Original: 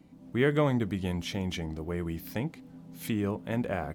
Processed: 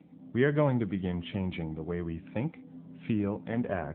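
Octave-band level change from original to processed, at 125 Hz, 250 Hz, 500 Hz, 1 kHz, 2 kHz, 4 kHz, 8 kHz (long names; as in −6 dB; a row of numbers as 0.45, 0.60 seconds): −0.5 dB, 0.0 dB, −0.5 dB, −1.5 dB, −1.5 dB, −7.0 dB, below −30 dB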